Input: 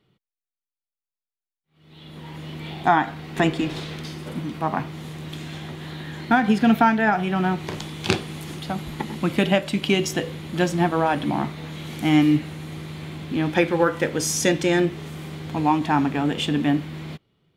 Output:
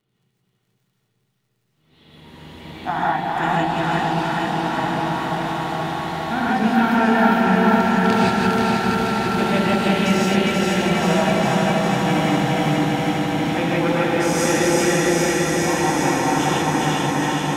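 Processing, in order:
feedback delay that plays each chunk backwards 241 ms, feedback 80%, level −2.5 dB
surface crackle 40 per second −50 dBFS
delay that swaps between a low-pass and a high-pass 203 ms, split 840 Hz, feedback 90%, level −3 dB
reverb whose tail is shaped and stops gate 190 ms rising, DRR −5.5 dB
level −8.5 dB

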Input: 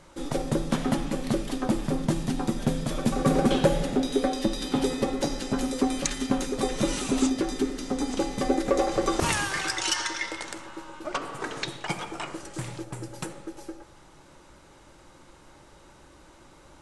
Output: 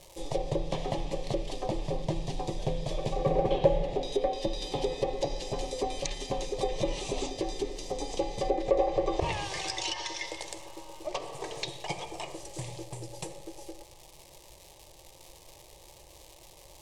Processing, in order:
surface crackle 370 per second −36 dBFS
phaser with its sweep stopped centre 590 Hz, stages 4
treble cut that deepens with the level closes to 2,400 Hz, closed at −23.5 dBFS

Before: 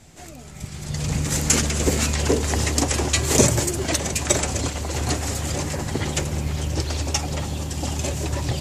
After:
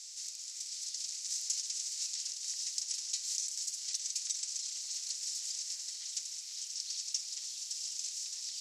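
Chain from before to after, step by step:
compressor on every frequency bin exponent 0.6
downward compressor 4 to 1, threshold −22 dBFS, peak gain reduction 11 dB
four-pole ladder band-pass 5,800 Hz, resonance 55%

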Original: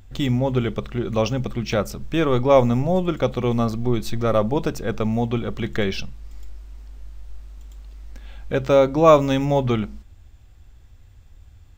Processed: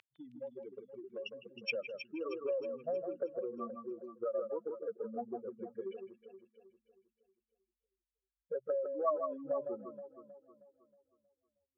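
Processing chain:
expanding power law on the bin magnitudes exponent 3.9
high-pass filter 440 Hz 12 dB per octave
downward compressor 8 to 1, threshold −33 dBFS, peak gain reduction 21.5 dB
band-pass filter sweep 2,600 Hz → 1,300 Hz, 0:01.26–0:01.96
on a send: delay that swaps between a low-pass and a high-pass 158 ms, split 2,200 Hz, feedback 66%, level −6 dB
on the sum: level +12.5 dB

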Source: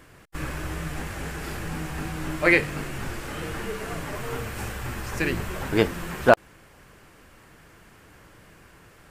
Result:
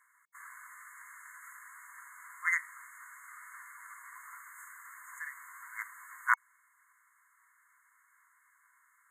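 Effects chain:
harmonic generator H 3 −13 dB, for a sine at −1.5 dBFS
linear-phase brick-wall high-pass 950 Hz
brick-wall band-stop 2,200–6,400 Hz
level −1.5 dB

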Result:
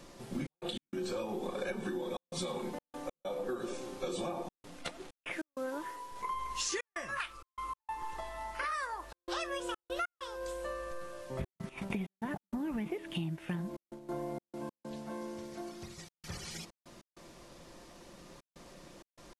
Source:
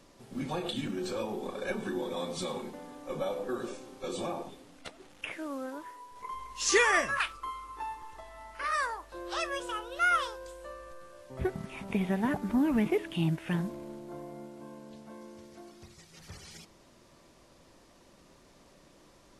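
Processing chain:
0:11.69–0:14.09: noise gate −41 dBFS, range −13 dB
comb filter 5.7 ms, depth 30%
downward compressor 20 to 1, threshold −38 dBFS, peak gain reduction 19.5 dB
gate pattern "xxx.x.xxxxxxxx." 97 BPM −60 dB
level +5 dB

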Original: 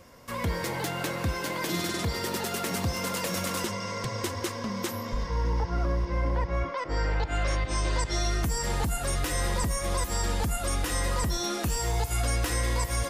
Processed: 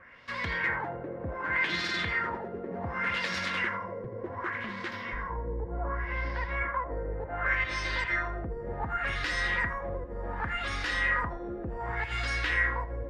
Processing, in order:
0:04.50–0:04.92: running median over 9 samples
parametric band 1,800 Hz +15 dB 1.1 octaves
echo with a time of its own for lows and highs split 800 Hz, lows 242 ms, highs 82 ms, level −9.5 dB
auto-filter low-pass sine 0.67 Hz 450–4,600 Hz
level −9 dB

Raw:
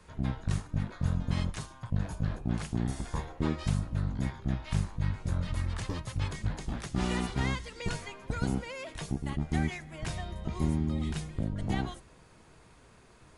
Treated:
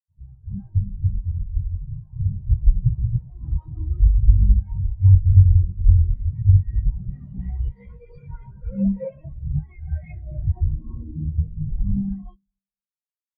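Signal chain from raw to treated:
0:00.70–0:02.18: downward compressor 10 to 1, threshold −32 dBFS, peak gain reduction 10 dB
fuzz pedal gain 48 dB, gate −51 dBFS
echo with a time of its own for lows and highs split 2,000 Hz, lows 224 ms, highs 111 ms, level −13 dB
reverb whose tail is shaped and stops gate 430 ms rising, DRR −4 dB
every bin expanded away from the loudest bin 4 to 1
level −4.5 dB

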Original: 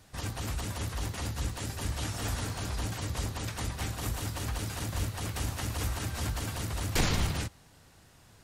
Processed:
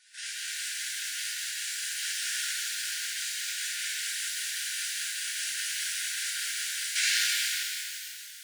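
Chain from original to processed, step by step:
linear-phase brick-wall band-pass 1,400–11,000 Hz
reverb with rising layers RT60 2.5 s, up +12 semitones, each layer −8 dB, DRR −8 dB

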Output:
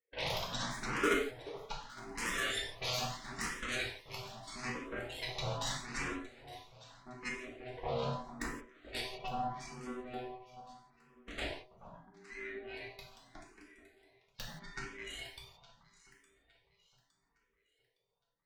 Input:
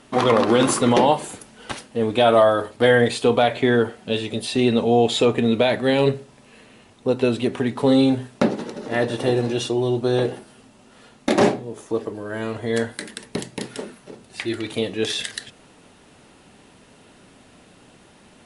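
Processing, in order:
spectral dynamics exaggerated over time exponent 2
ring modulation 500 Hz
downward compressor 1.5 to 1, threshold −38 dBFS, peak gain reduction 8.5 dB
pair of resonant band-passes 900 Hz, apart 2.1 octaves
harmonic generator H 3 −7 dB, 6 −10 dB, 7 −21 dB, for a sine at −35.5 dBFS
output level in coarse steps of 10 dB
delay that swaps between a low-pass and a high-pass 431 ms, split 1,300 Hz, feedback 62%, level −13 dB
reverb whose tail is shaped and stops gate 200 ms falling, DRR −3 dB
frequency shifter mixed with the dry sound +0.79 Hz
level +12.5 dB

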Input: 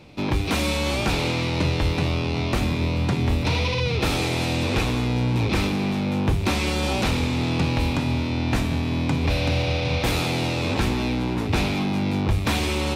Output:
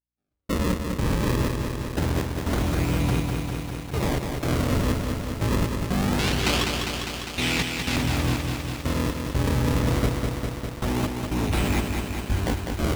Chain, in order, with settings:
sample-and-hold swept by an LFO 35×, swing 160% 0.24 Hz
brickwall limiter −17.5 dBFS, peak gain reduction 4.5 dB
0:06.19–0:07.96: meter weighting curve D
mains hum 60 Hz, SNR 10 dB
gate pattern "..x.xx..x.xxx." 61 BPM −60 dB
feedback echo at a low word length 201 ms, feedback 80%, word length 7 bits, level −4.5 dB

